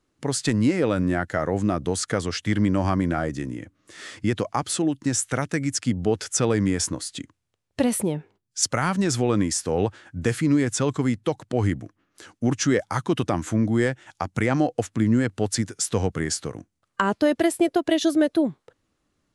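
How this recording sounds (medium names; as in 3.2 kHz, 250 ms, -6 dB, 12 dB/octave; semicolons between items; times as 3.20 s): noise floor -75 dBFS; spectral tilt -5.0 dB/octave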